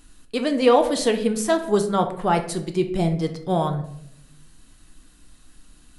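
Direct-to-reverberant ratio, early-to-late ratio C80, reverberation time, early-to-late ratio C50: 5.0 dB, 13.5 dB, 0.70 s, 10.5 dB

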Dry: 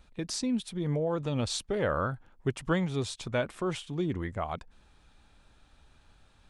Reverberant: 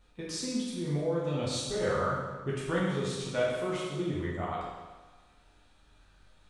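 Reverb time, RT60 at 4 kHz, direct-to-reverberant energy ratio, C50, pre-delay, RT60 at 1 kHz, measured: 1.3 s, 1.2 s, −7.0 dB, −0.5 dB, 10 ms, 1.3 s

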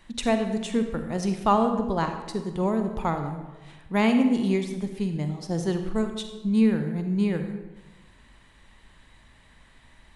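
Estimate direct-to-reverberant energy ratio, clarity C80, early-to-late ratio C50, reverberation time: 6.5 dB, 9.0 dB, 7.0 dB, 1.2 s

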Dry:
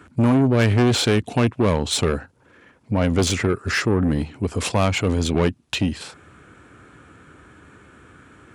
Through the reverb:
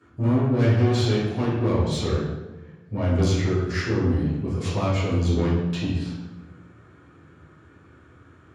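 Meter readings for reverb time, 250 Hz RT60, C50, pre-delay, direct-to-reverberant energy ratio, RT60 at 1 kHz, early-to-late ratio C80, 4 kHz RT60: 1.1 s, 1.6 s, 0.5 dB, 3 ms, −11.0 dB, 1.0 s, 3.0 dB, 0.80 s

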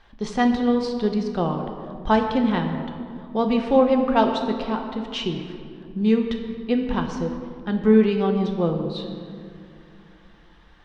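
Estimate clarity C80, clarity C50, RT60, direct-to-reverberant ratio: 7.0 dB, 6.0 dB, 2.5 s, 3.0 dB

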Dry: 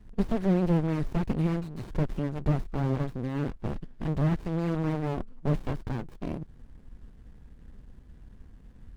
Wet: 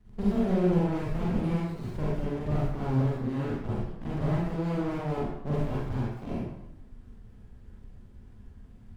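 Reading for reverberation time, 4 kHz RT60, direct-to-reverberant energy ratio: 0.75 s, 0.65 s, −7.5 dB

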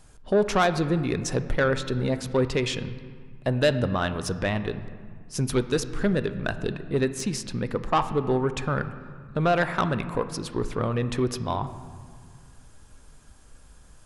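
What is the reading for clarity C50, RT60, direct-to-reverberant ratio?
12.0 dB, 1.9 s, 10.5 dB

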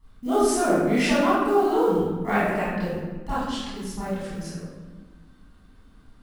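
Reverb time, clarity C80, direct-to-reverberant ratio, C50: 1.4 s, 0.5 dB, −12.5 dB, −3.0 dB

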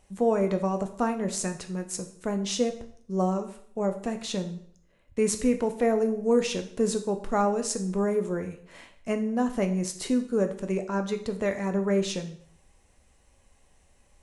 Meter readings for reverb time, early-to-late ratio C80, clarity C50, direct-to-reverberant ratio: 0.60 s, 15.0 dB, 11.5 dB, 6.0 dB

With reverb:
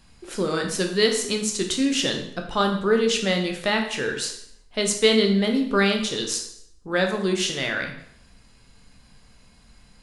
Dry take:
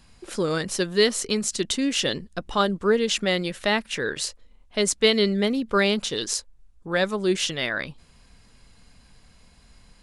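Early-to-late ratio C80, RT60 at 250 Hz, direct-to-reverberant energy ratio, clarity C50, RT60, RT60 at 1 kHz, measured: 10.0 dB, 0.70 s, 2.5 dB, 7.0 dB, 0.70 s, 0.70 s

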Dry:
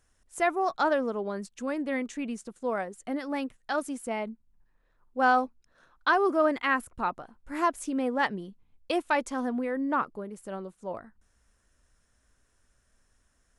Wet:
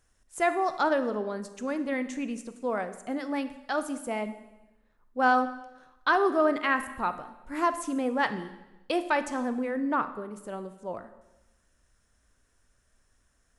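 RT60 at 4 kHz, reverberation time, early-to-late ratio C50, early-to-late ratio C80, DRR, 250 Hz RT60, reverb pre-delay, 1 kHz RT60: 1.0 s, 1.0 s, 12.0 dB, 14.5 dB, 10.5 dB, 1.1 s, 22 ms, 0.95 s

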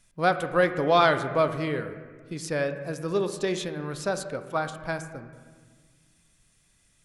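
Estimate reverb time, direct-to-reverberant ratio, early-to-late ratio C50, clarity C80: 1.6 s, 8.0 dB, 10.0 dB, 11.5 dB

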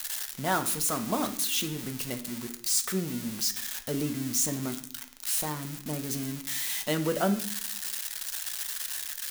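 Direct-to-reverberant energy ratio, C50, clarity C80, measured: 5.0 dB, 12.5 dB, 15.5 dB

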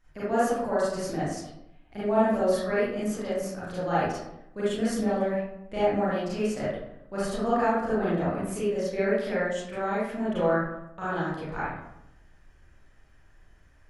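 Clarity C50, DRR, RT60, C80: −3.0 dB, −11.0 dB, 0.80 s, 2.5 dB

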